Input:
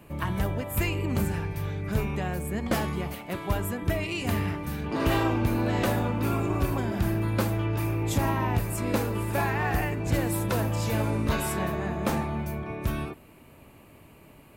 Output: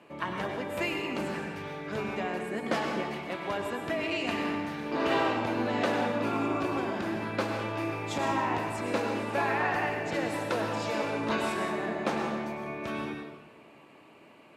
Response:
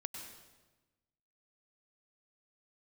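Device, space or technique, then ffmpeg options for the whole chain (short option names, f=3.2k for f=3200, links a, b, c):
supermarket ceiling speaker: -filter_complex "[0:a]highpass=310,lowpass=5k[a];[1:a]atrim=start_sample=2205[b];[a][b]afir=irnorm=-1:irlink=0,volume=3dB"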